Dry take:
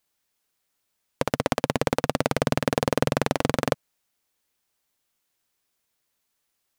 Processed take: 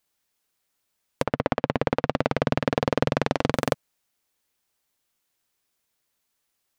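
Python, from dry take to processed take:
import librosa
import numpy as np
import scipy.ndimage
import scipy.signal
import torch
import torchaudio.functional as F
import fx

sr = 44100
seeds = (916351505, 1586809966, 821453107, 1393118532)

y = fx.lowpass(x, sr, hz=fx.line((1.23, 2300.0), (3.53, 5200.0)), slope=12, at=(1.23, 3.53), fade=0.02)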